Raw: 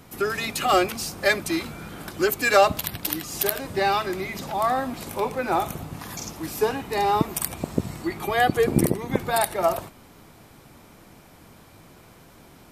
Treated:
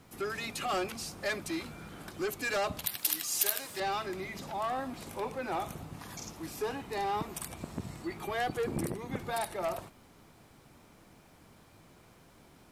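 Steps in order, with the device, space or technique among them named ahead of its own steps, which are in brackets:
compact cassette (soft clipping −18.5 dBFS, distortion −10 dB; low-pass filter 12,000 Hz 12 dB per octave; tape wow and flutter 25 cents; white noise bed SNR 42 dB)
0:02.86–0:03.80: spectral tilt +4 dB per octave
level −8.5 dB

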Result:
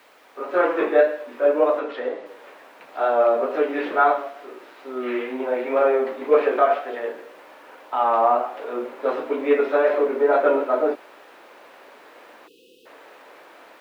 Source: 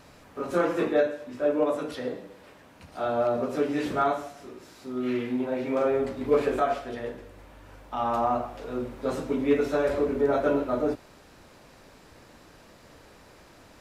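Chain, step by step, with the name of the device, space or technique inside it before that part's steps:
dictaphone (band-pass filter 350–4,000 Hz; automatic gain control gain up to 8.5 dB; tape wow and flutter; white noise bed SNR 26 dB)
0:01.79–0:02.26: high-frequency loss of the air 68 metres
0:12.47–0:12.86: time-frequency box erased 530–2,500 Hz
three-way crossover with the lows and the highs turned down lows −19 dB, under 270 Hz, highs −18 dB, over 3,300 Hz

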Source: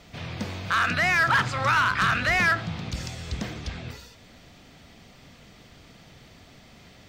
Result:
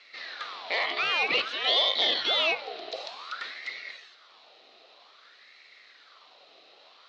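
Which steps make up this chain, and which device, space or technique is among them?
voice changer toy (ring modulator whose carrier an LFO sweeps 1,300 Hz, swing 60%, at 0.53 Hz; loudspeaker in its box 530–4,600 Hz, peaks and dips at 910 Hz −8 dB, 1,600 Hz −7 dB, 4,000 Hz +9 dB)

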